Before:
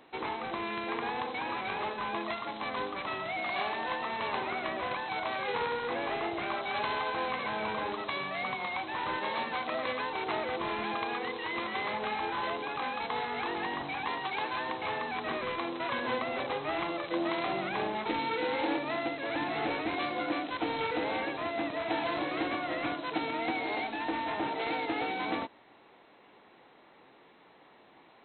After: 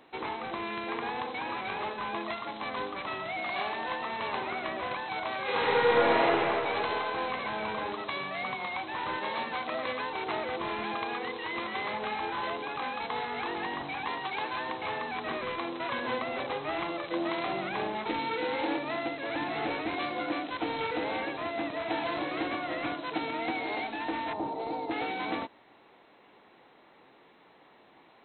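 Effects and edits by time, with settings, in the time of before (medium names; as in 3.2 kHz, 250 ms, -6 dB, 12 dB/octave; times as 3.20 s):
5.42–6.26 s: reverb throw, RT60 2.9 s, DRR -8 dB
24.33–24.91 s: high-order bell 2.2 kHz -14.5 dB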